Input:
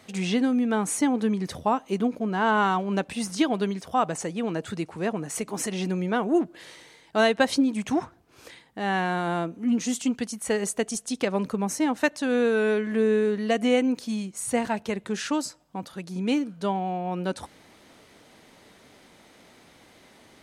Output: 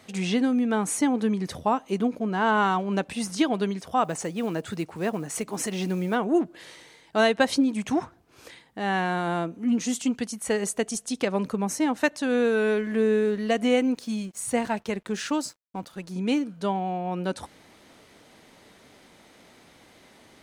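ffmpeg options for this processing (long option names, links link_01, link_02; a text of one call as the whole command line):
ffmpeg -i in.wav -filter_complex "[0:a]asplit=3[link_01][link_02][link_03];[link_01]afade=type=out:start_time=4.03:duration=0.02[link_04];[link_02]acrusher=bits=7:mode=log:mix=0:aa=0.000001,afade=type=in:start_time=4.03:duration=0.02,afade=type=out:start_time=6.14:duration=0.02[link_05];[link_03]afade=type=in:start_time=6.14:duration=0.02[link_06];[link_04][link_05][link_06]amix=inputs=3:normalize=0,asettb=1/sr,asplit=3[link_07][link_08][link_09];[link_07]atrim=end=12.424[link_10];[link_08]atrim=start=12.42:end=16.13,asetpts=PTS-STARTPTS,afade=type=in:duration=0.004:curve=qsin,afade=type=out:start_time=3.706:duration=0.004:curve=qsin,aeval=exprs='sgn(val(0))*max(abs(val(0))-0.002,0)':channel_layout=same[link_11];[link_09]atrim=start=16.126[link_12];[link_10][link_11]acrossfade=duration=0.004:curve1=hsin:curve2=qsin[link_13];[link_13][link_12]acrossfade=duration=0.004:curve1=qsin:curve2=hsin" out.wav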